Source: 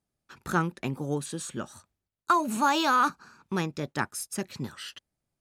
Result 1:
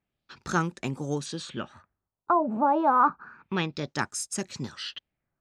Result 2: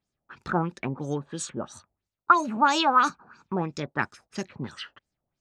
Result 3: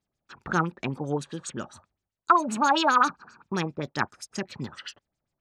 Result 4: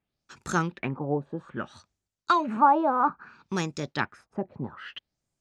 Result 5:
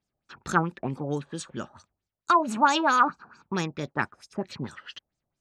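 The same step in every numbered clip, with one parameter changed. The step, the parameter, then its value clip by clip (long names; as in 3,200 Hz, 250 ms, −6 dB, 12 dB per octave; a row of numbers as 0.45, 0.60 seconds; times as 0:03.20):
auto-filter low-pass, speed: 0.29, 3, 7.6, 0.61, 4.5 Hertz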